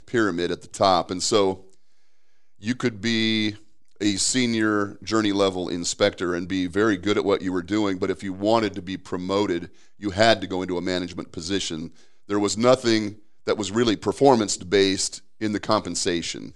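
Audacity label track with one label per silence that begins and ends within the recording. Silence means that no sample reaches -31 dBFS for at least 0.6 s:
1.550000	2.640000	silence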